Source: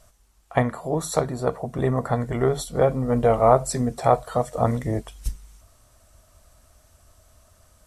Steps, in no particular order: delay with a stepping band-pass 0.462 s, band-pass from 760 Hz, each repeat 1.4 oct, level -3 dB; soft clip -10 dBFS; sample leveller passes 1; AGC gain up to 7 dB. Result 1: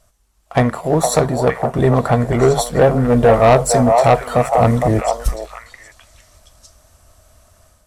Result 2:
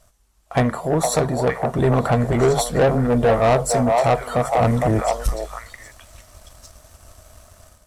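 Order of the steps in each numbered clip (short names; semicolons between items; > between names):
sample leveller > delay with a stepping band-pass > soft clip > AGC; delay with a stepping band-pass > AGC > soft clip > sample leveller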